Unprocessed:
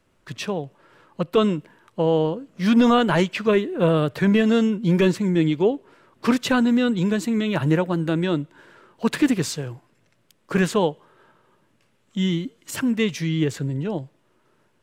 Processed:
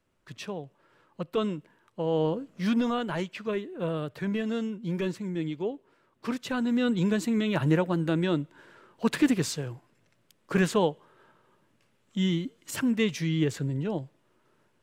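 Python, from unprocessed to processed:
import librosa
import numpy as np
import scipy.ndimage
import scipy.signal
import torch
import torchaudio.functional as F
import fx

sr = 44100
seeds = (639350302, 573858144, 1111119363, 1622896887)

y = fx.gain(x, sr, db=fx.line((2.04, -9.5), (2.4, -0.5), (2.88, -12.0), (6.47, -12.0), (6.92, -4.0)))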